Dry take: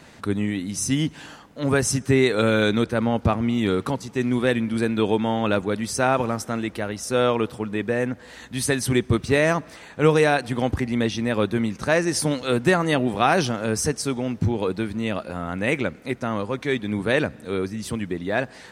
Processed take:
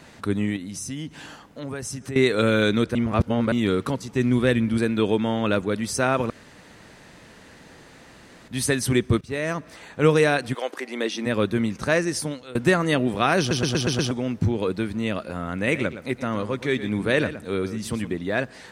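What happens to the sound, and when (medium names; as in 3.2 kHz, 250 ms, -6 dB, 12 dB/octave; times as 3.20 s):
0.56–2.16 s: compression 3:1, threshold -32 dBFS
2.95–3.52 s: reverse
4.13–4.78 s: bass shelf 100 Hz +11.5 dB
6.30–8.48 s: room tone
9.21–9.86 s: fade in, from -15.5 dB
10.53–11.25 s: high-pass 530 Hz -> 230 Hz 24 dB/octave
11.94–12.55 s: fade out, to -22.5 dB
13.39 s: stutter in place 0.12 s, 6 plays
15.54–18.15 s: delay 117 ms -12.5 dB
whole clip: dynamic bell 810 Hz, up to -6 dB, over -40 dBFS, Q 3.2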